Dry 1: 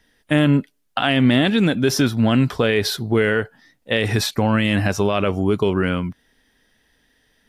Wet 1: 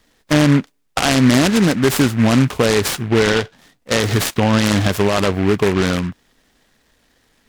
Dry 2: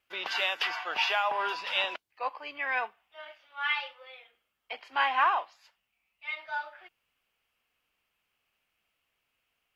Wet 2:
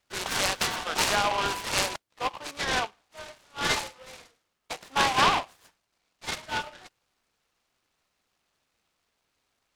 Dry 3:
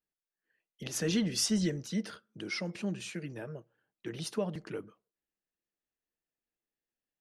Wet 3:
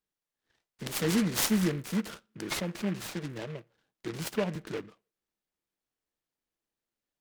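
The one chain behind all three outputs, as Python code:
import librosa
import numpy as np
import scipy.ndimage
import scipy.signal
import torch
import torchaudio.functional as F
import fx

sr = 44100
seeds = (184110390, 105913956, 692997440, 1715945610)

y = fx.noise_mod_delay(x, sr, seeds[0], noise_hz=1600.0, depth_ms=0.096)
y = y * librosa.db_to_amplitude(3.0)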